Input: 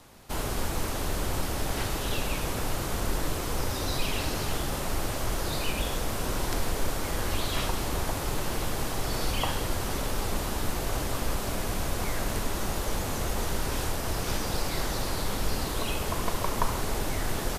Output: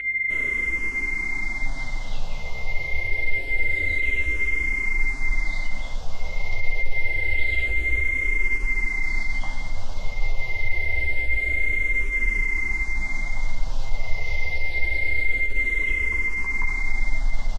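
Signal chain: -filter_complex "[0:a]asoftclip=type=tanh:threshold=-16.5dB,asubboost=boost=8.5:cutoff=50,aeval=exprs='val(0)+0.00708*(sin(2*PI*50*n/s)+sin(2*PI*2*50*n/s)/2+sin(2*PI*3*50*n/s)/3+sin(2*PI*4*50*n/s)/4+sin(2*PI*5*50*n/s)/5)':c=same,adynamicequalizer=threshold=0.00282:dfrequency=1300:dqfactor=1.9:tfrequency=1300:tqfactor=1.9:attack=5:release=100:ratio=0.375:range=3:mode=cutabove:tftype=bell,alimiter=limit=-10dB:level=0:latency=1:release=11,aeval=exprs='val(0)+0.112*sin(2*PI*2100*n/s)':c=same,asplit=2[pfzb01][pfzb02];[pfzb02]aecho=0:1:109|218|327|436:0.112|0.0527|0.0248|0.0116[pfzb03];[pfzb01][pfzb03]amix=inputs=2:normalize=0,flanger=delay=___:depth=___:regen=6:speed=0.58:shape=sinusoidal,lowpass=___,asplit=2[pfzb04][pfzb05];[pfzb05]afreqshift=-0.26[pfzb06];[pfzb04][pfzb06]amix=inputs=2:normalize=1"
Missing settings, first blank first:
7.4, 8.2, 5800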